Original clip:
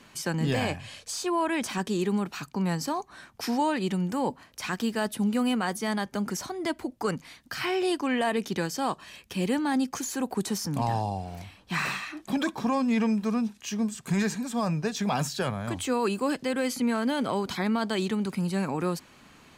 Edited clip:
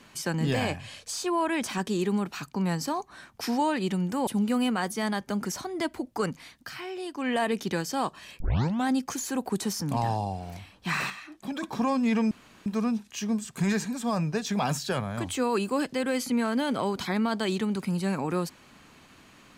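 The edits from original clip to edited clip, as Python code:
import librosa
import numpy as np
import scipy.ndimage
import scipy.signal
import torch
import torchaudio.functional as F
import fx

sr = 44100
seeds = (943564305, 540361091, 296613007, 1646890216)

y = fx.edit(x, sr, fx.cut(start_s=4.27, length_s=0.85),
    fx.fade_down_up(start_s=7.38, length_s=0.82, db=-9.5, fade_s=0.25),
    fx.tape_start(start_s=9.25, length_s=0.48),
    fx.clip_gain(start_s=11.95, length_s=0.53, db=-6.5),
    fx.insert_room_tone(at_s=13.16, length_s=0.35), tone=tone)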